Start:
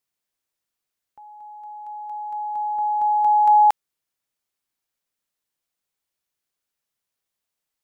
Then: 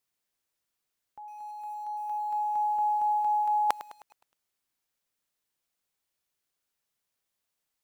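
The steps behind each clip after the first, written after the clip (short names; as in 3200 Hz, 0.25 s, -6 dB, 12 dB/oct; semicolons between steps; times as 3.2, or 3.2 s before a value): reverse; compressor 16:1, threshold -23 dBFS, peak gain reduction 11.5 dB; reverse; lo-fi delay 0.104 s, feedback 55%, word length 8-bit, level -14.5 dB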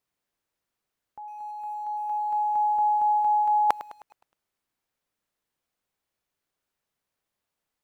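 high shelf 2600 Hz -9.5 dB; gain +5 dB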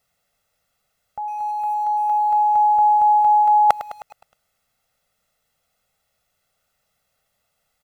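in parallel at +3 dB: compressor, threshold -32 dBFS, peak gain reduction 15 dB; on the sum: comb 1.5 ms, depth 84%; gain +2.5 dB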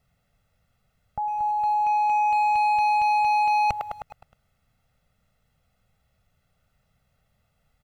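overloaded stage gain 20 dB; tone controls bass +15 dB, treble -8 dB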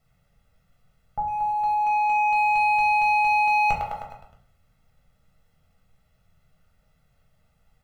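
shoebox room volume 61 m³, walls mixed, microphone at 0.72 m; gain -1 dB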